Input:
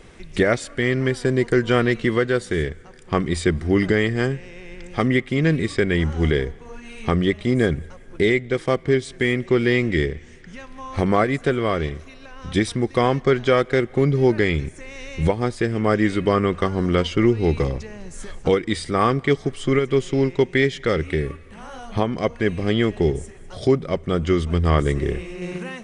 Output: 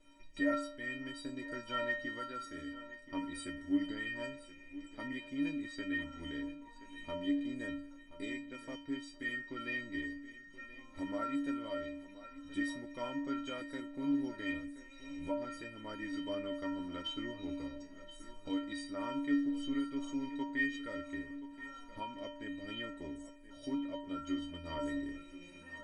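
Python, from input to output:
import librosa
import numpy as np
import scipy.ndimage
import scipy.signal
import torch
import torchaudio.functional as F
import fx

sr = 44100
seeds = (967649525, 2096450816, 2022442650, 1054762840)

y = fx.high_shelf(x, sr, hz=8200.0, db=-4.0)
y = fx.stiff_resonator(y, sr, f0_hz=280.0, decay_s=0.74, stiffness=0.03)
y = fx.echo_feedback(y, sr, ms=1027, feedback_pct=32, wet_db=-15.0)
y = y * librosa.db_to_amplitude(2.5)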